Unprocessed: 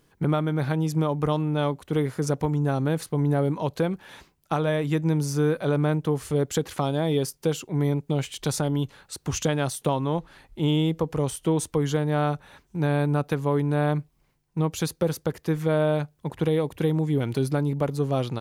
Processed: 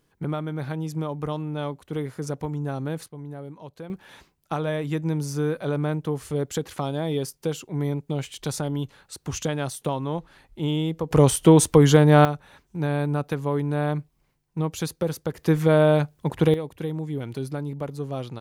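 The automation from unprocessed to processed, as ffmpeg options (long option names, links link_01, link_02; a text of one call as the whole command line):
ffmpeg -i in.wav -af "asetnsamples=nb_out_samples=441:pad=0,asendcmd='3.08 volume volume -14.5dB;3.9 volume volume -2.5dB;11.11 volume volume 9.5dB;12.25 volume volume -1.5dB;15.38 volume volume 5dB;16.54 volume volume -6dB',volume=-5dB" out.wav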